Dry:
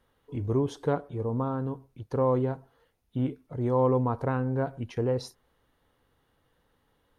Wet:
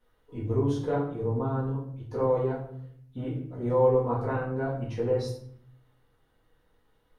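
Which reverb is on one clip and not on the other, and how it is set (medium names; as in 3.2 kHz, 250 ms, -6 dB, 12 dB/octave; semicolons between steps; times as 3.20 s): simulated room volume 92 m³, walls mixed, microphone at 1.9 m; trim -8.5 dB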